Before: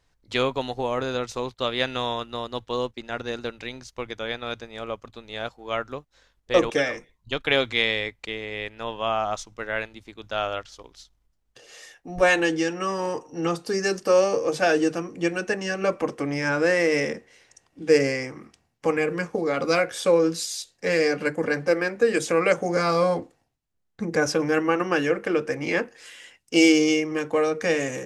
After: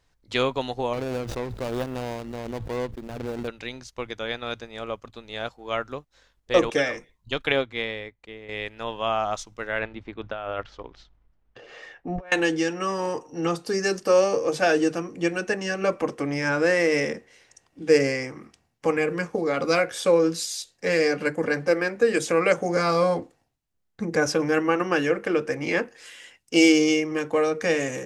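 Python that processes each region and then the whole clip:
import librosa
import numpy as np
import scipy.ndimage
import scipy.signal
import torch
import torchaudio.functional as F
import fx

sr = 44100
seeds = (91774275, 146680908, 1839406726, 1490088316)

y = fx.chain(x, sr, fx.median_filter(points=41),
    fx.pre_swell(db_per_s=36.0), at=(0.93, 3.48))
y = fx.chain(y, sr, fx.peak_eq(hz=6400.0, db=-9.5, octaves=2.8),
    fx.upward_expand(threshold_db=-38.0, expansion=1.5), at=(7.52, 8.49))
y = fx.chain(y, sr, fx.lowpass(hz=2200.0, slope=12),
    fx.over_compress(threshold_db=-33.0, ratio=-1.0), at=(9.79, 12.32))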